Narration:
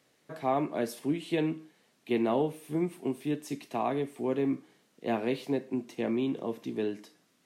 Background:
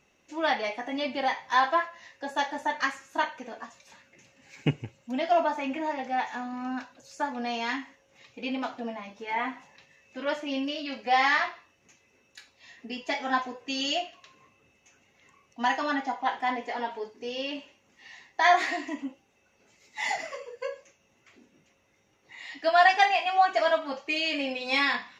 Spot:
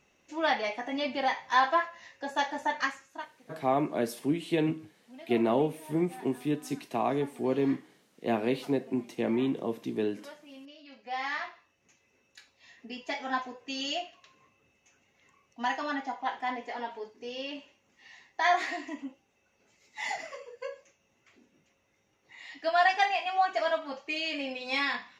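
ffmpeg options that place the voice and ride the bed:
-filter_complex "[0:a]adelay=3200,volume=1.19[s0];[1:a]volume=4.47,afade=t=out:st=2.77:d=0.5:silence=0.133352,afade=t=in:st=10.79:d=1.32:silence=0.199526[s1];[s0][s1]amix=inputs=2:normalize=0"

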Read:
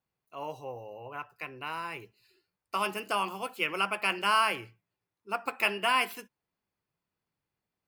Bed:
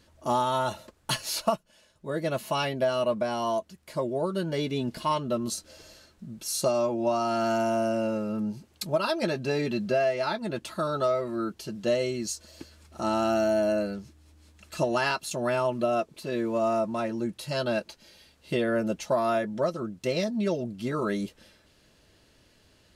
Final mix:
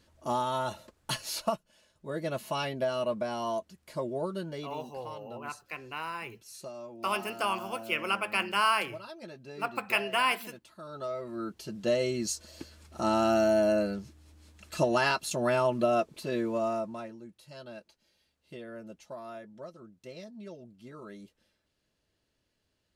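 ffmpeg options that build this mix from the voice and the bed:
-filter_complex "[0:a]adelay=4300,volume=0.944[s0];[1:a]volume=4.47,afade=t=out:st=4.24:d=0.55:silence=0.223872,afade=t=in:st=10.8:d=1.43:silence=0.133352,afade=t=out:st=16.18:d=1.02:silence=0.133352[s1];[s0][s1]amix=inputs=2:normalize=0"

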